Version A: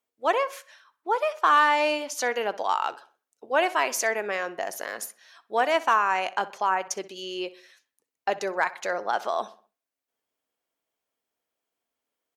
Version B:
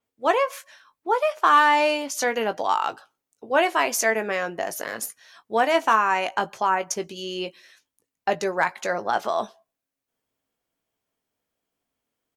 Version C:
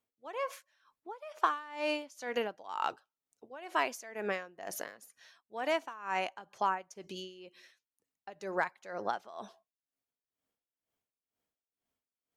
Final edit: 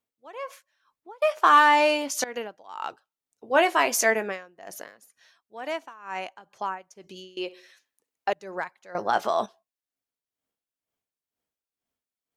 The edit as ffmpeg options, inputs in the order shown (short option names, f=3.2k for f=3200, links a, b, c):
-filter_complex "[1:a]asplit=3[a][b][c];[2:a]asplit=5[d][e][f][g][h];[d]atrim=end=1.222[i];[a]atrim=start=1.218:end=2.242[j];[e]atrim=start=2.238:end=3.57[k];[b]atrim=start=3.33:end=4.37[l];[f]atrim=start=4.13:end=7.372[m];[0:a]atrim=start=7.368:end=8.332[n];[g]atrim=start=8.328:end=8.952[o];[c]atrim=start=8.948:end=9.462[p];[h]atrim=start=9.458[q];[i][j]acrossfade=d=0.004:c1=hsin:c2=hsin[r];[r][k]acrossfade=d=0.004:c1=hsin:c2=hsin[s];[s][l]acrossfade=d=0.24:c1=tri:c2=tri[t];[t][m]acrossfade=d=0.24:c1=tri:c2=tri[u];[u][n]acrossfade=d=0.004:c1=hsin:c2=hsin[v];[v][o]acrossfade=d=0.004:c1=hsin:c2=hsin[w];[w][p]acrossfade=d=0.004:c1=hsin:c2=hsin[x];[x][q]acrossfade=d=0.004:c1=hsin:c2=hsin"